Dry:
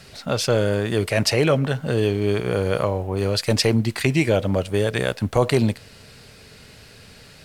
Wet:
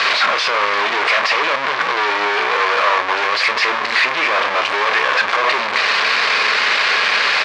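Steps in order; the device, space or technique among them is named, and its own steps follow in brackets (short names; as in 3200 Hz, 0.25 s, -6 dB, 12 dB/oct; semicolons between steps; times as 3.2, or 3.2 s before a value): home computer beeper (infinite clipping; speaker cabinet 660–4500 Hz, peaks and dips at 1100 Hz +10 dB, 1700 Hz +6 dB, 2300 Hz +6 dB); bell 130 Hz -5.5 dB 0.78 oct; doubler 29 ms -11 dB; gain +6.5 dB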